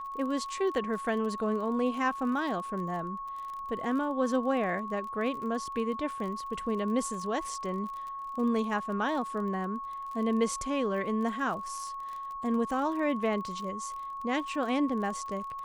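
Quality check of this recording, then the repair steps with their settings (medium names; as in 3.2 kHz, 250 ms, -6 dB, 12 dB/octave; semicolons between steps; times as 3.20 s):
crackle 34 per s -38 dBFS
whine 1.1 kHz -36 dBFS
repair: de-click; band-stop 1.1 kHz, Q 30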